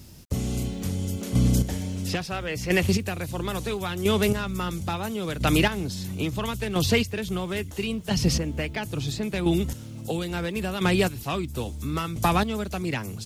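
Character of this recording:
chopped level 0.74 Hz, depth 60%, duty 20%
a quantiser's noise floor 12 bits, dither none

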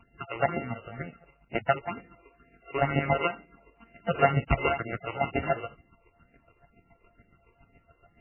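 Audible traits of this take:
a buzz of ramps at a fixed pitch in blocks of 64 samples
phaser sweep stages 8, 2.1 Hz, lowest notch 200–1,200 Hz
chopped level 7.1 Hz, depth 65%, duty 25%
MP3

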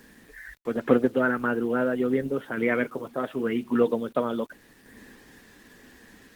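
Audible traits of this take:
sample-and-hold tremolo
a quantiser's noise floor 10 bits, dither none
Opus

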